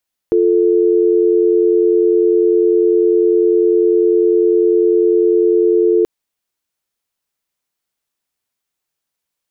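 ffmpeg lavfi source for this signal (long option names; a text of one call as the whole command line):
ffmpeg -f lavfi -i "aevalsrc='0.251*(sin(2*PI*350*t)+sin(2*PI*440*t))':duration=5.73:sample_rate=44100" out.wav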